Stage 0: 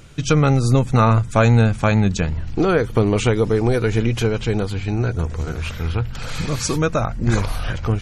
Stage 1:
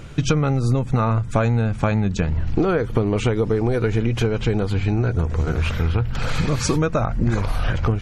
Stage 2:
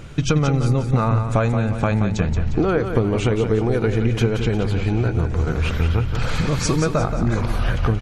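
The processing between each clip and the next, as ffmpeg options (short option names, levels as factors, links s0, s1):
-af "highshelf=f=3600:g=-9.5,acompressor=threshold=0.0708:ratio=6,volume=2.24"
-af "aecho=1:1:177|354|531|708|885:0.398|0.179|0.0806|0.0363|0.0163"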